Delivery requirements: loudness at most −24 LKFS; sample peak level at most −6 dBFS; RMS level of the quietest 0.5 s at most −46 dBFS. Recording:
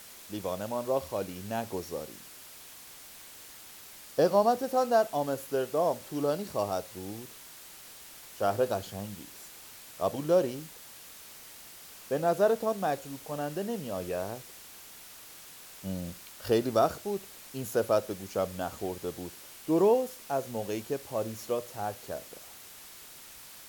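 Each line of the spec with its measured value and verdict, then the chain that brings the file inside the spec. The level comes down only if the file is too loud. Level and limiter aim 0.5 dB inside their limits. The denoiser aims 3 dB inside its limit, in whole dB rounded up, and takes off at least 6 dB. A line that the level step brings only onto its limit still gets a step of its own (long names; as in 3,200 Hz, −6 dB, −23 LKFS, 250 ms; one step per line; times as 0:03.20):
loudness −31.0 LKFS: in spec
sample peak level −12.5 dBFS: in spec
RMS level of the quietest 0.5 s −49 dBFS: in spec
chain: no processing needed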